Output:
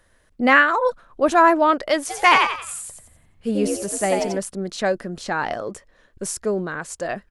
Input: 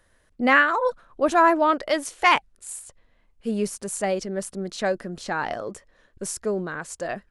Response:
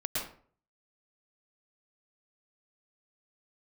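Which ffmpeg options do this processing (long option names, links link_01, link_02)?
-filter_complex "[0:a]asplit=3[link_01][link_02][link_03];[link_01]afade=type=out:start_time=2.09:duration=0.02[link_04];[link_02]asplit=6[link_05][link_06][link_07][link_08][link_09][link_10];[link_06]adelay=89,afreqshift=69,volume=-3.5dB[link_11];[link_07]adelay=178,afreqshift=138,volume=-11.9dB[link_12];[link_08]adelay=267,afreqshift=207,volume=-20.3dB[link_13];[link_09]adelay=356,afreqshift=276,volume=-28.7dB[link_14];[link_10]adelay=445,afreqshift=345,volume=-37.1dB[link_15];[link_05][link_11][link_12][link_13][link_14][link_15]amix=inputs=6:normalize=0,afade=type=in:start_time=2.09:duration=0.02,afade=type=out:start_time=4.37:duration=0.02[link_16];[link_03]afade=type=in:start_time=4.37:duration=0.02[link_17];[link_04][link_16][link_17]amix=inputs=3:normalize=0,volume=3dB"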